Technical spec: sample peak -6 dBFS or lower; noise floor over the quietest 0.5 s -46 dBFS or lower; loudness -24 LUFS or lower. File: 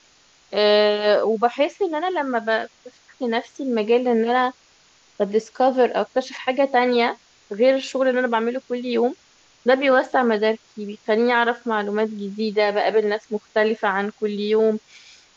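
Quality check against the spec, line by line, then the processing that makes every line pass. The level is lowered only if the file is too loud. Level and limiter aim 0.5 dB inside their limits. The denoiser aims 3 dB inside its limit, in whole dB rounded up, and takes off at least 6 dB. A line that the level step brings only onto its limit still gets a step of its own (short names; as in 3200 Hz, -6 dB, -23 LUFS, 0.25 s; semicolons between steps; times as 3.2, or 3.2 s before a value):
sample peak -4.5 dBFS: fail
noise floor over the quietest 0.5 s -56 dBFS: OK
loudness -21.0 LUFS: fail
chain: gain -3.5 dB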